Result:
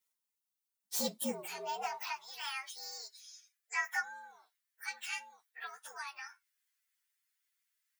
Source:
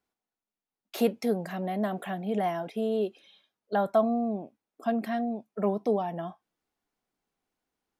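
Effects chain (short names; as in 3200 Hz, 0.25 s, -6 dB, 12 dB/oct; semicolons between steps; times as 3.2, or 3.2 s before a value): inharmonic rescaling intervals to 119%; pre-emphasis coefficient 0.97; high-pass sweep 120 Hz -> 1700 Hz, 0.93–2.36; gain +11.5 dB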